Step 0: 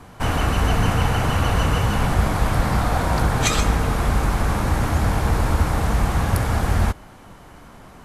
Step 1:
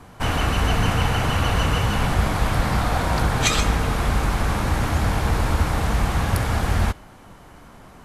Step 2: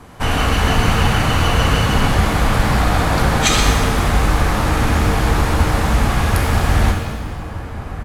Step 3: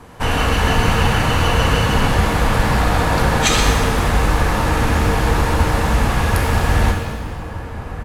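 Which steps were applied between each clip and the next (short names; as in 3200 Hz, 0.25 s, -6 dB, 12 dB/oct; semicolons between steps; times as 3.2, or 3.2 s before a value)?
dynamic EQ 3200 Hz, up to +4 dB, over -39 dBFS, Q 0.74; gain -1.5 dB
outdoor echo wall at 210 m, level -11 dB; shimmer reverb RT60 1.3 s, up +7 st, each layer -8 dB, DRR 2.5 dB; gain +3.5 dB
small resonant body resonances 490/930/1700/2700 Hz, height 6 dB; gain -1 dB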